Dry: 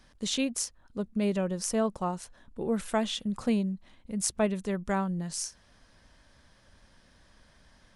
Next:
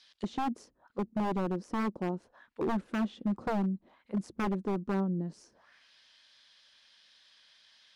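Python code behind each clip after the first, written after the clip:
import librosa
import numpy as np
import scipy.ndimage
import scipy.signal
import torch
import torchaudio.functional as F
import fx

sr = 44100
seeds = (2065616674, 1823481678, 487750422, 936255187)

y = fx.peak_eq(x, sr, hz=4600.0, db=3.5, octaves=0.67)
y = fx.auto_wah(y, sr, base_hz=300.0, top_hz=4100.0, q=2.1, full_db=-32.5, direction='down')
y = 10.0 ** (-32.0 / 20.0) * (np.abs((y / 10.0 ** (-32.0 / 20.0) + 3.0) % 4.0 - 2.0) - 1.0)
y = y * 10.0 ** (7.5 / 20.0)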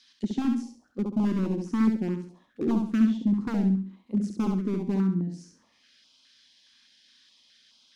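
y = fx.graphic_eq_15(x, sr, hz=(250, 630, 6300), db=(11, -5, 4))
y = fx.echo_feedback(y, sr, ms=68, feedback_pct=34, wet_db=-4.5)
y = fx.filter_held_notch(y, sr, hz=4.8, low_hz=600.0, high_hz=1800.0)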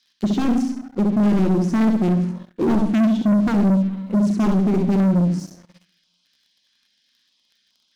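y = fx.room_shoebox(x, sr, seeds[0], volume_m3=1900.0, walls='furnished', distance_m=0.91)
y = fx.leveller(y, sr, passes=3)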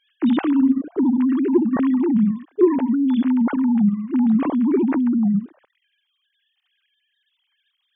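y = fx.sine_speech(x, sr)
y = fx.rider(y, sr, range_db=10, speed_s=0.5)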